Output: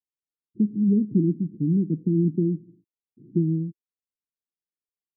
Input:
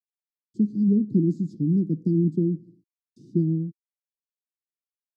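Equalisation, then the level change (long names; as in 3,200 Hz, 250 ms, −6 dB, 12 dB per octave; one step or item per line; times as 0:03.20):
Butterworth low-pass 500 Hz 96 dB per octave
0.0 dB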